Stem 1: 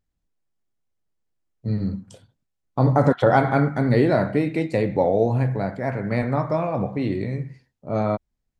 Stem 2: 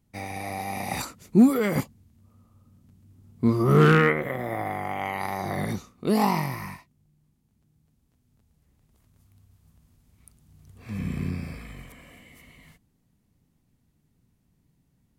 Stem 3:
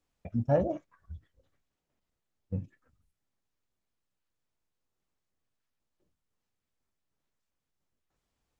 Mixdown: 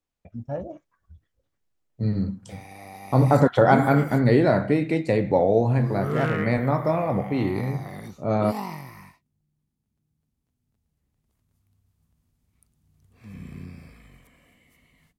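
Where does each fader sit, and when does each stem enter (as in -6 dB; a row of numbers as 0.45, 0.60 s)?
0.0, -9.5, -5.5 dB; 0.35, 2.35, 0.00 s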